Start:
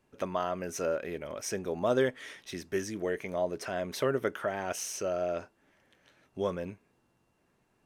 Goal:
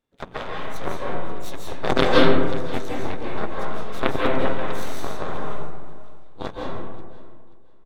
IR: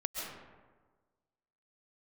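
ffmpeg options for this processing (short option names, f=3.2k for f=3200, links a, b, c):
-filter_complex "[0:a]asplit=4[a][b][c][d];[b]asetrate=29433,aresample=44100,atempo=1.49831,volume=-3dB[e];[c]asetrate=33038,aresample=44100,atempo=1.33484,volume=-6dB[f];[d]asetrate=55563,aresample=44100,atempo=0.793701,volume=-4dB[g];[a][e][f][g]amix=inputs=4:normalize=0,aeval=exprs='0.376*(cos(1*acos(clip(val(0)/0.376,-1,1)))-cos(1*PI/2))+0.119*(cos(3*acos(clip(val(0)/0.376,-1,1)))-cos(3*PI/2))+0.0335*(cos(4*acos(clip(val(0)/0.376,-1,1)))-cos(4*PI/2))':c=same,equalizer=f=3.6k:t=o:w=0.21:g=9.5,aecho=1:1:533|1066:0.106|0.0244[h];[1:a]atrim=start_sample=2205,asetrate=36603,aresample=44100[i];[h][i]afir=irnorm=-1:irlink=0,alimiter=level_in=12.5dB:limit=-1dB:release=50:level=0:latency=1"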